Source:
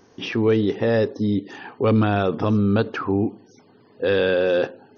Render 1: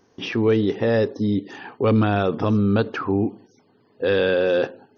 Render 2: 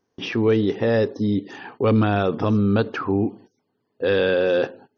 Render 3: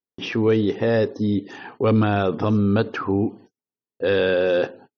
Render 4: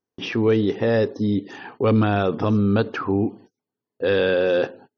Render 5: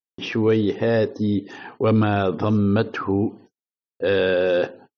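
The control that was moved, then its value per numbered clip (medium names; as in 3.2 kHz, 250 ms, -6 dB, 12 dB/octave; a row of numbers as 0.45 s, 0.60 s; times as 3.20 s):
gate, range: -6 dB, -20 dB, -46 dB, -34 dB, -59 dB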